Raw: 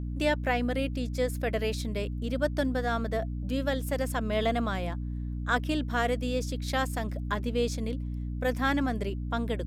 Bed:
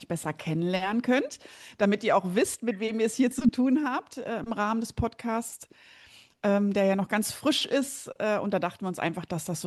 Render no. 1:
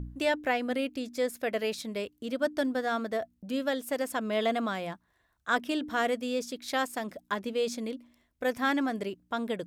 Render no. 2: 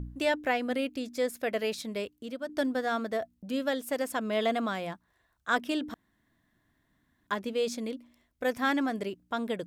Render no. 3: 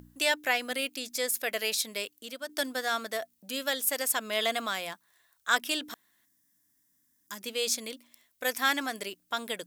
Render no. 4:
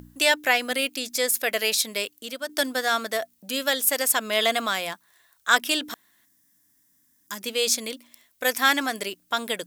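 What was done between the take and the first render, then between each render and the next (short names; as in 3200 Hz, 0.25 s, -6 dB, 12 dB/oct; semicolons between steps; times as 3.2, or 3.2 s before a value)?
de-hum 60 Hz, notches 5
2.04–2.49 fade out, to -10.5 dB; 5.94–7.27 room tone
6.25–7.41 spectral gain 330–4700 Hz -13 dB; tilt +4.5 dB/oct
gain +6.5 dB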